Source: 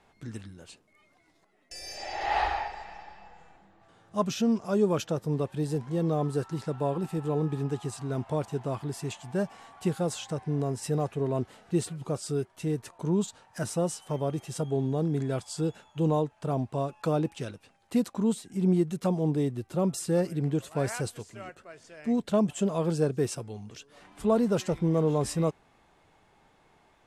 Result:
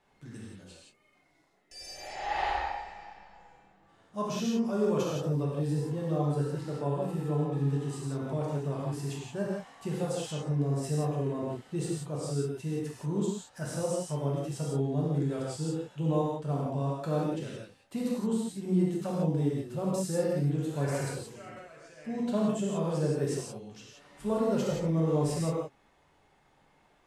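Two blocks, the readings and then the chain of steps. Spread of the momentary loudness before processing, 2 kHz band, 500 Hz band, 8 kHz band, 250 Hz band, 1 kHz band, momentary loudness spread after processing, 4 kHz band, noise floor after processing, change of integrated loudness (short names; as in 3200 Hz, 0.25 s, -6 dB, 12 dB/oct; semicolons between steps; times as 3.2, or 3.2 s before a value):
12 LU, -2.5 dB, -2.5 dB, -2.5 dB, -2.5 dB, -2.5 dB, 14 LU, -2.5 dB, -66 dBFS, -2.0 dB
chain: non-linear reverb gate 0.2 s flat, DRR -5 dB; gain -8.5 dB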